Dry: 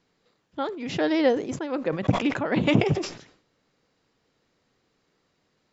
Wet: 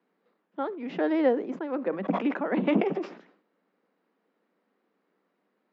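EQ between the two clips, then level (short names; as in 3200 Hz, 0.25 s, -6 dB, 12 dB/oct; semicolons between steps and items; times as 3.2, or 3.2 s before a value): steep high-pass 180 Hz 72 dB/oct; LPF 1800 Hz 12 dB/oct; -2.0 dB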